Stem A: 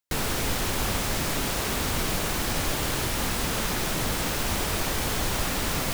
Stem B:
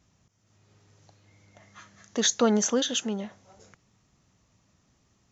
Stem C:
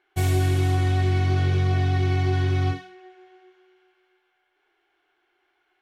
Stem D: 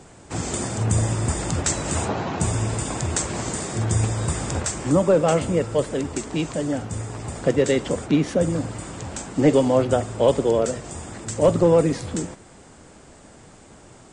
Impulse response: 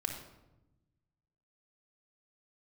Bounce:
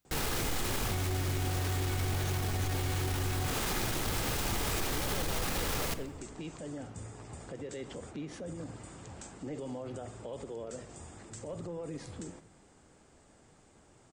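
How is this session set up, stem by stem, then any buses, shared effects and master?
0.0 dB, 0.00 s, send -6 dB, limiter -23.5 dBFS, peak gain reduction 9.5 dB; soft clip -30.5 dBFS, distortion -14 dB
-19.5 dB, 0.00 s, no send, dry
-6.0 dB, 0.75 s, no send, dry
-15.5 dB, 0.05 s, send -14.5 dB, limiter -19 dBFS, peak gain reduction 12 dB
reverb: on, RT60 0.95 s, pre-delay 3 ms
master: limiter -24.5 dBFS, peak gain reduction 9 dB

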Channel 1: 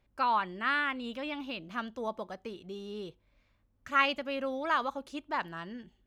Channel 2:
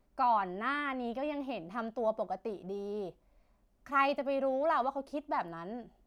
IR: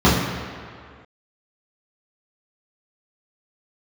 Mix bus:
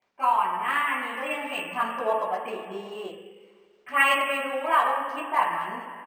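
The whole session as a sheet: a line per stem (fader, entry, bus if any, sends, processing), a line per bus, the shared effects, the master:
-2.0 dB, 0.00 s, send -8.5 dB, steep low-pass 3100 Hz 96 dB/oct; reverb removal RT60 1.8 s; bell 1400 Hz -14 dB 0.43 oct
+2.5 dB, 23 ms, polarity flipped, no send, upward compressor, threshold -52 dBFS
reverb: on, RT60 2.1 s, pre-delay 3 ms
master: HPF 1000 Hz 12 dB/oct; vocal rider within 5 dB 2 s; decimation joined by straight lines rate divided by 4×

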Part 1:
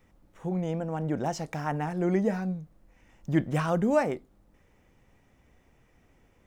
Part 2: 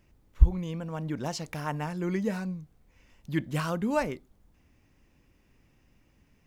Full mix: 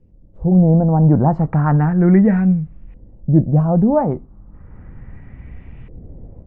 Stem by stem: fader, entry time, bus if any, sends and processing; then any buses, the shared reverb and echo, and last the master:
-4.5 dB, 0.00 s, no send, tone controls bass +14 dB, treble -13 dB; AGC gain up to 16 dB; LFO low-pass saw up 0.34 Hz 460–2900 Hz
-15.0 dB, 0.00 s, polarity flipped, no send, auto duck -15 dB, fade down 1.55 s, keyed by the first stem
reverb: off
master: LPF 7100 Hz; low shelf 350 Hz +3.5 dB

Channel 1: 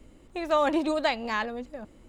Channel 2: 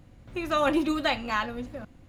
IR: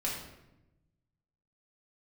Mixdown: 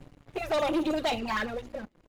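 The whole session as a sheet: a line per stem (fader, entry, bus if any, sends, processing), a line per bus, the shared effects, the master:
-11.0 dB, 0.00 s, no send, LFO low-pass sine 9.5 Hz 340–5200 Hz
-3.0 dB, 0.6 ms, polarity flipped, no send, auto duck -8 dB, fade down 0.35 s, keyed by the first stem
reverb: off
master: envelope flanger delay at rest 8.5 ms, full sweep at -29.5 dBFS; sample leveller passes 3

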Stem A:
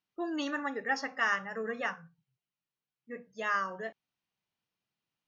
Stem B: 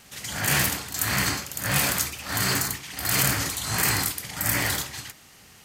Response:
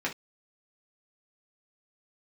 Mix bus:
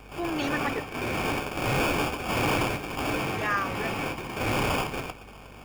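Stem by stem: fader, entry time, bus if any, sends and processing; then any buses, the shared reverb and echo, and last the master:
+3.0 dB, 0.00 s, muted 0.85–3.29, no send, dry
+1.5 dB, 0.00 s, send -13 dB, sample-rate reducer 2000 Hz, jitter 0%; hard clip -27 dBFS, distortion -6 dB; bell 2300 Hz +14 dB 0.31 oct; auto duck -10 dB, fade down 0.40 s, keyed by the first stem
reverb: on, pre-delay 3 ms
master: hum 50 Hz, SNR 22 dB

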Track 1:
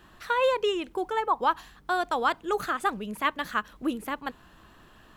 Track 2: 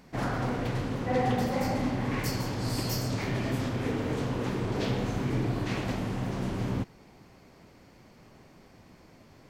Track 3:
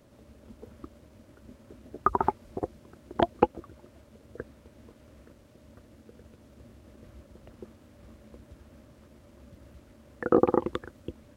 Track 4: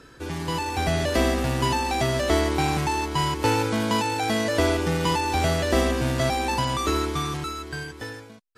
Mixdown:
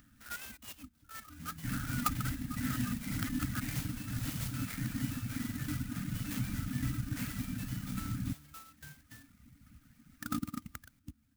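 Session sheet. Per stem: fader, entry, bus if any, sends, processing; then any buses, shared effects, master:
-9.5 dB, 0.00 s, no send, stepped spectrum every 50 ms
-3.0 dB, 1.50 s, no send, LPF 8100 Hz 12 dB/oct
-5.5 dB, 0.00 s, no send, upward compressor, threshold -55 dBFS
-16.0 dB, 1.10 s, no send, dry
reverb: off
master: FFT band-reject 310–1200 Hz; reverb removal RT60 1.4 s; clock jitter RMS 0.076 ms

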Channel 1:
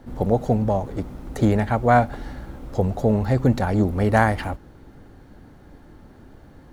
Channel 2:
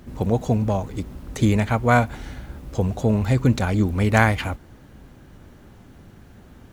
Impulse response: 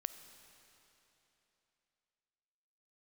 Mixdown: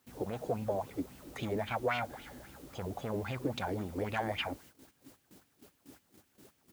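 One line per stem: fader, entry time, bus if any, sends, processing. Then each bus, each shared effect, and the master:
-15.5 dB, 0.00 s, no send, limiter -13.5 dBFS, peak gain reduction 10 dB
-0.5 dB, 0.4 ms, polarity flipped, no send, soft clip -19 dBFS, distortion -9 dB; wah 3.7 Hz 270–3100 Hz, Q 3.2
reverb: off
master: requantised 10-bit, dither triangular; gate -54 dBFS, range -15 dB; HPF 87 Hz 12 dB/oct

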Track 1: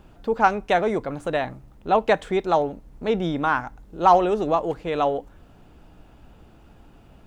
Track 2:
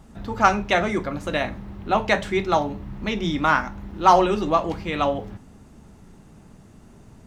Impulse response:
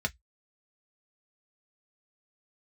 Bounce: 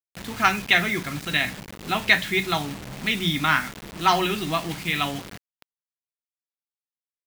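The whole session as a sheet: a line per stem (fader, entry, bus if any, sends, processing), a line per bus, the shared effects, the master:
-13.0 dB, 0.00 s, send -16 dB, dry
-4.5 dB, 0.00 s, send -16 dB, bell 3000 Hz +5 dB 0.99 oct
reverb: on, RT60 0.10 s, pre-delay 3 ms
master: graphic EQ 125/250/500/1000/2000/4000 Hz +6/+7/-11/-4/+8/+9 dB; bit-crush 6-bit; low shelf 140 Hz -7 dB

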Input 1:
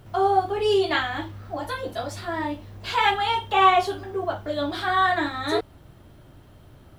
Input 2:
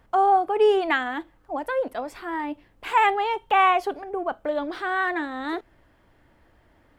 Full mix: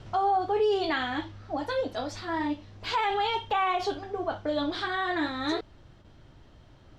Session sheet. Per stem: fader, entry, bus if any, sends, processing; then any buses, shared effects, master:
+2.5 dB, 0.00 s, no send, LPF 6100 Hz 24 dB/oct; limiter -17.5 dBFS, peak gain reduction 11 dB; high shelf 3400 Hz +9 dB; auto duck -9 dB, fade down 0.25 s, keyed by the second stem
-5.5 dB, 0.00 s, no send, tilt -2 dB/oct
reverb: off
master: gate with hold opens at -46 dBFS; limiter -18.5 dBFS, peak gain reduction 6.5 dB

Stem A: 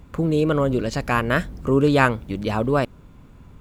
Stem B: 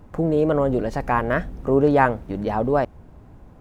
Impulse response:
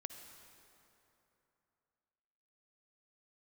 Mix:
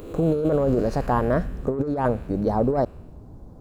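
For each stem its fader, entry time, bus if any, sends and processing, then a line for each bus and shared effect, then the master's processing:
-2.5 dB, 0.00 s, no send, time blur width 0.414 s; Chebyshev high-pass 330 Hz, order 3; high shelf 10000 Hz +11 dB; auto duck -18 dB, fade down 1.70 s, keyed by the second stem
+1.5 dB, 0.00 s, no send, EQ curve 470 Hz 0 dB, 1200 Hz -7 dB, 2500 Hz -22 dB, 4200 Hz -3 dB; soft clip -9.5 dBFS, distortion -22 dB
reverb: off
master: negative-ratio compressor -20 dBFS, ratio -0.5

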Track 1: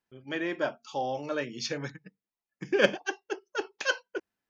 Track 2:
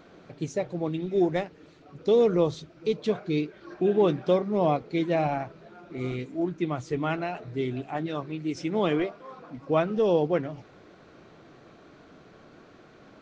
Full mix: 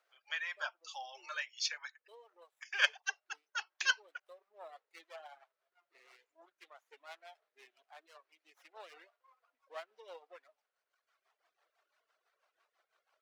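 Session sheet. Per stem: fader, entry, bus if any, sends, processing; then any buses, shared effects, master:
0.0 dB, 0.00 s, no send, HPF 1100 Hz 12 dB/oct
-12.5 dB, 0.00 s, no send, rotary speaker horn 6 Hz; running maximum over 9 samples; auto duck -7 dB, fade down 0.45 s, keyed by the first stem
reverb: off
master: Bessel high-pass 1000 Hz, order 6; reverb removal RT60 1.6 s

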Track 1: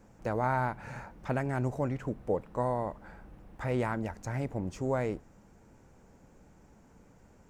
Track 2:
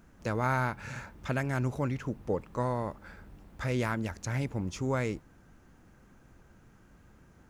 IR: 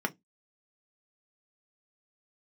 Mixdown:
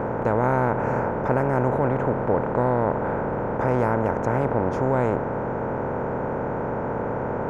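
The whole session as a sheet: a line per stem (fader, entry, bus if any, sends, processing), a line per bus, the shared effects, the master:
+2.0 dB, 0.00 s, no send, per-bin compression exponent 0.2; LPF 1400 Hz 12 dB/oct
-1.0 dB, 0.00 s, no send, high shelf 8900 Hz +4.5 dB; auto duck -9 dB, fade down 0.25 s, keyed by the first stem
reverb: off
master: dry

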